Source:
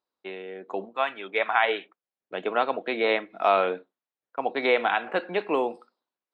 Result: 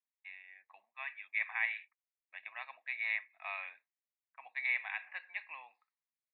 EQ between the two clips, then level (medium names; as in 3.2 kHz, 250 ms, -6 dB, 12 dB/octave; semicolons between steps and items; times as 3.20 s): Butterworth band-pass 2.3 kHz, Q 1.4; distance through air 170 m; static phaser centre 2.1 kHz, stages 8; -2.5 dB